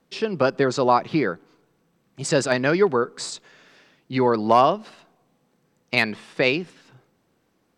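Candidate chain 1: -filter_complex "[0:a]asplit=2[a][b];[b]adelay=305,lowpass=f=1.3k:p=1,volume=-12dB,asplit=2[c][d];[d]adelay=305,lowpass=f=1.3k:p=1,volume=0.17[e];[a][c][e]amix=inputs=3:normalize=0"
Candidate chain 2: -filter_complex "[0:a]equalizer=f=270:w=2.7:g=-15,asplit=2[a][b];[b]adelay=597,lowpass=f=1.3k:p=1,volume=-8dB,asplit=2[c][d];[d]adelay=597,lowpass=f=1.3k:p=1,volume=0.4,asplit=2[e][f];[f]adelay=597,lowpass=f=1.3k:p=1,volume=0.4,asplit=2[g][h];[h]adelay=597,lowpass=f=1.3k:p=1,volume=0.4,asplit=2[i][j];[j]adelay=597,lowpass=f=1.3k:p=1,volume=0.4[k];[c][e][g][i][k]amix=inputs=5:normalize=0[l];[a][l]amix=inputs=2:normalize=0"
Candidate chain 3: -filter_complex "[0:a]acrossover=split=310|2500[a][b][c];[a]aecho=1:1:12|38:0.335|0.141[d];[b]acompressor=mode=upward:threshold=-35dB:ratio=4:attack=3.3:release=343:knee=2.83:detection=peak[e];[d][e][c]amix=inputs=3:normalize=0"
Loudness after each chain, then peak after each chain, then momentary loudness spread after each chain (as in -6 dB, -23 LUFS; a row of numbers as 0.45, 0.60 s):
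-22.0, -24.0, -22.0 LUFS; -4.5, -5.0, -3.0 dBFS; 17, 16, 14 LU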